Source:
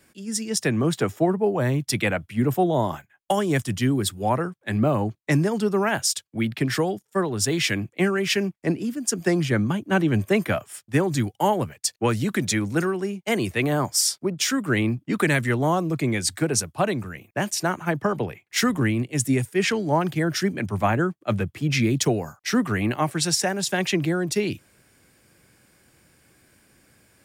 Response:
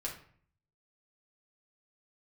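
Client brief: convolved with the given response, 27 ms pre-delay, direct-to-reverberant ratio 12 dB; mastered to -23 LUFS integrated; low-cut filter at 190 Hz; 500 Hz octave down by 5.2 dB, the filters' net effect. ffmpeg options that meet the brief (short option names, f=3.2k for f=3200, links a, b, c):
-filter_complex "[0:a]highpass=190,equalizer=f=500:t=o:g=-7,asplit=2[a][b];[1:a]atrim=start_sample=2205,adelay=27[c];[b][c]afir=irnorm=-1:irlink=0,volume=-13dB[d];[a][d]amix=inputs=2:normalize=0,volume=3dB"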